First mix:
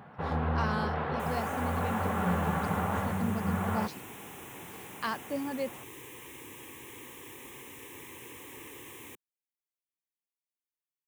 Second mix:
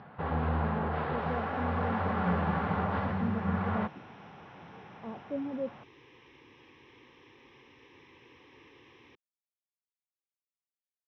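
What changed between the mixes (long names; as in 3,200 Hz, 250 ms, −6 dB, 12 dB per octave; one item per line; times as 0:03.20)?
speech: add inverse Chebyshev low-pass filter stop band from 3,800 Hz, stop band 80 dB
second sound −8.5 dB
master: add Butterworth low-pass 5,600 Hz 96 dB per octave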